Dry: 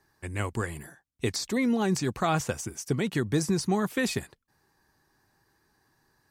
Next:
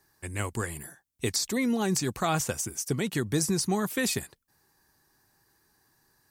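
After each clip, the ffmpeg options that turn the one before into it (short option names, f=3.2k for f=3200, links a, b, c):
-af "highshelf=f=6.1k:g=12,volume=-1.5dB"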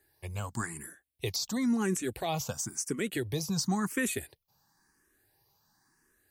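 -filter_complex "[0:a]alimiter=limit=-18dB:level=0:latency=1:release=168,asplit=2[a][b];[b]afreqshift=0.96[c];[a][c]amix=inputs=2:normalize=1"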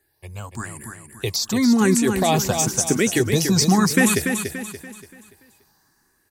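-af "dynaudnorm=f=300:g=9:m=11dB,aecho=1:1:288|576|864|1152|1440:0.473|0.189|0.0757|0.0303|0.0121,volume=2dB"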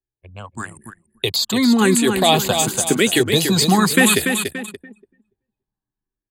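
-filter_complex "[0:a]anlmdn=15.8,lowshelf=f=140:g=-11.5,acrossover=split=150|4400[a][b][c];[b]aexciter=amount=3.3:drive=4.5:freq=3k[d];[a][d][c]amix=inputs=3:normalize=0,volume=4.5dB"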